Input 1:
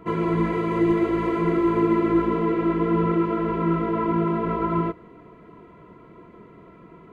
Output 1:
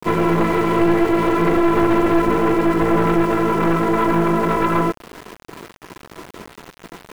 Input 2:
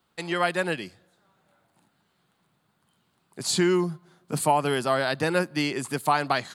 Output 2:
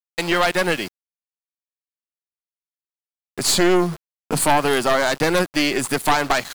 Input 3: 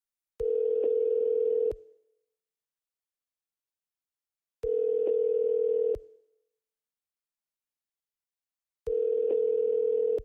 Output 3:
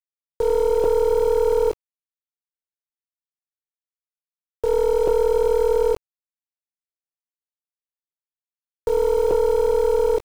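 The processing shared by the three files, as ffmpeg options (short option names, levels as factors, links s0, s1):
-filter_complex "[0:a]lowshelf=f=150:g=-8,agate=range=0.398:threshold=0.00355:ratio=16:detection=peak,asplit=2[s0][s1];[s1]acompressor=threshold=0.02:ratio=6,volume=1.33[s2];[s0][s2]amix=inputs=2:normalize=0,aeval=exprs='0.473*(cos(1*acos(clip(val(0)/0.473,-1,1)))-cos(1*PI/2))+0.211*(cos(5*acos(clip(val(0)/0.473,-1,1)))-cos(5*PI/2))+0.188*(cos(6*acos(clip(val(0)/0.473,-1,1)))-cos(6*PI/2))+0.0299*(cos(8*acos(clip(val(0)/0.473,-1,1)))-cos(8*PI/2))':c=same,aeval=exprs='val(0)*gte(abs(val(0)),0.0447)':c=same,volume=0.631"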